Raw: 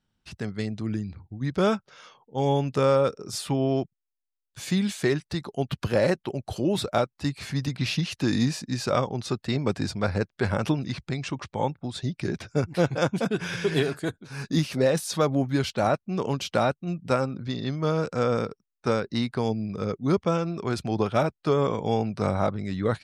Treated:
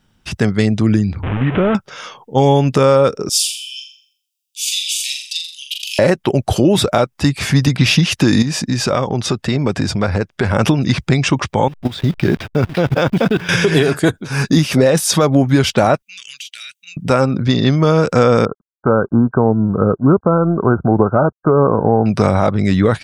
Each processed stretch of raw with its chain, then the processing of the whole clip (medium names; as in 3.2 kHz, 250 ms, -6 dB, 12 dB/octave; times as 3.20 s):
1.23–1.75 s: one-bit delta coder 16 kbps, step -31 dBFS + compression 3:1, threshold -30 dBFS
3.29–5.99 s: steep high-pass 2.6 kHz 72 dB/octave + flutter echo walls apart 7.2 m, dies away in 0.54 s
8.42–10.55 s: treble shelf 11 kHz -8 dB + compression 3:1, threshold -32 dBFS
11.68–13.49 s: send-on-delta sampling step -42.5 dBFS + resonant high shelf 5.3 kHz -7.5 dB, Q 1.5 + level held to a coarse grid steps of 15 dB
16.02–16.97 s: inverse Chebyshev high-pass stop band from 950 Hz, stop band 50 dB + compression 8:1, threshold -45 dBFS + band-stop 5.2 kHz, Q 7.4
18.45–22.06 s: companding laws mixed up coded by A + brick-wall FIR low-pass 1.6 kHz
whole clip: band-stop 4.2 kHz, Q 9.4; compression, threshold -25 dBFS; loudness maximiser +18.5 dB; trim -1 dB